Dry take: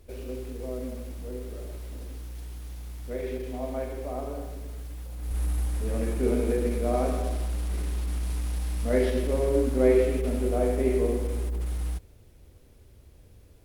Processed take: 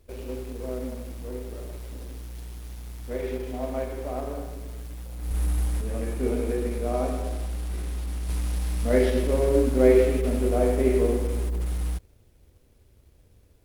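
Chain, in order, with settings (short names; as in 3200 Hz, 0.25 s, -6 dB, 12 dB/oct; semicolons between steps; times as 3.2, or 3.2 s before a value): G.711 law mismatch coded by A; 5.81–8.29 resonator 52 Hz, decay 0.22 s, harmonics all, mix 70%; gain +3.5 dB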